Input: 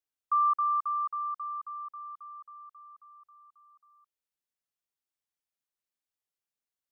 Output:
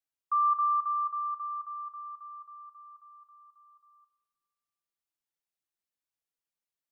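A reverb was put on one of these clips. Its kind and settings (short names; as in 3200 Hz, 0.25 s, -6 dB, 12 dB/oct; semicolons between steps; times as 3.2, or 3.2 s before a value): shoebox room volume 3000 m³, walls mixed, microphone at 0.71 m; gain -3 dB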